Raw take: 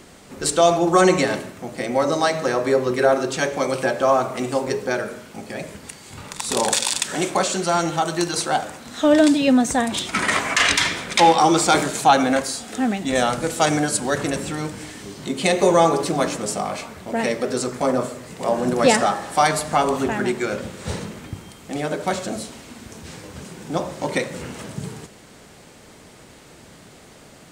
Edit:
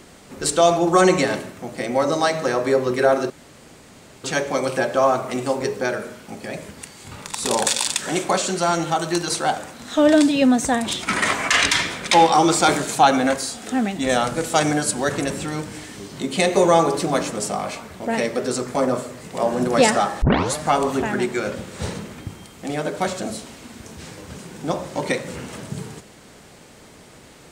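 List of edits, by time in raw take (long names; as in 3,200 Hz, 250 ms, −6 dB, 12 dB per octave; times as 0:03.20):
0:03.30: splice in room tone 0.94 s
0:19.28: tape start 0.33 s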